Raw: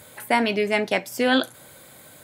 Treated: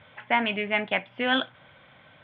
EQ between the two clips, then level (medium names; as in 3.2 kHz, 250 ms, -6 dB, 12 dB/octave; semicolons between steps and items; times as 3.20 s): Chebyshev low-pass 3.4 kHz, order 6; bass shelf 63 Hz -5.5 dB; peaking EQ 380 Hz -10 dB 1.4 oct; 0.0 dB